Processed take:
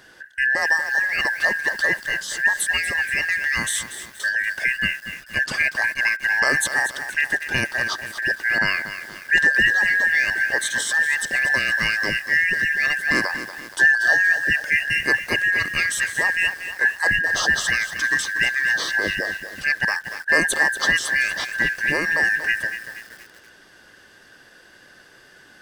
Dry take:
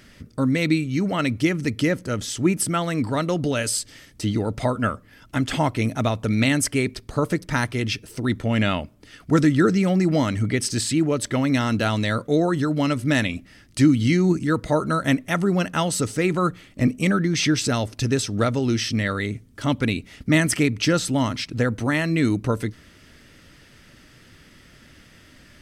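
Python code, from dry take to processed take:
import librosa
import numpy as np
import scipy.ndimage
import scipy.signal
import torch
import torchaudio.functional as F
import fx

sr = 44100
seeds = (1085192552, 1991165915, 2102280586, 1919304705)

y = fx.band_shuffle(x, sr, order='2143')
y = fx.echo_crushed(y, sr, ms=237, feedback_pct=55, bits=6, wet_db=-10)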